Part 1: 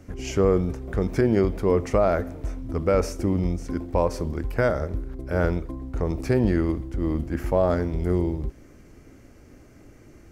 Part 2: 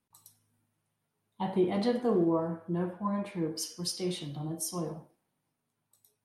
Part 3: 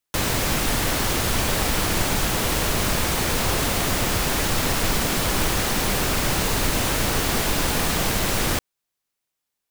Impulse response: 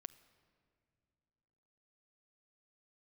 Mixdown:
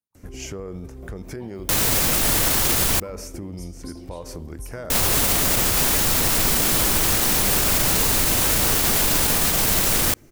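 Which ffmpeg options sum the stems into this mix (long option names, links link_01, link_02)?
-filter_complex "[0:a]alimiter=limit=-16.5dB:level=0:latency=1:release=49,acompressor=threshold=-28dB:ratio=5,adelay=150,volume=-2.5dB[link_01];[1:a]volume=-16dB[link_02];[2:a]adelay=1550,volume=3dB,asplit=3[link_03][link_04][link_05];[link_03]atrim=end=3,asetpts=PTS-STARTPTS,afade=type=out:start_time=2.996:duration=0.004:curve=hsin[link_06];[link_04]atrim=start=3:end=4.9,asetpts=PTS-STARTPTS,volume=0[link_07];[link_05]atrim=start=4.9,asetpts=PTS-STARTPTS,afade=type=in:duration=0.004:curve=hsin[link_08];[link_06][link_07][link_08]concat=n=3:v=0:a=1,asplit=2[link_09][link_10];[link_10]volume=-21.5dB[link_11];[3:a]atrim=start_sample=2205[link_12];[link_11][link_12]afir=irnorm=-1:irlink=0[link_13];[link_01][link_02][link_09][link_13]amix=inputs=4:normalize=0,highshelf=frequency=6200:gain=11,alimiter=limit=-9.5dB:level=0:latency=1:release=48"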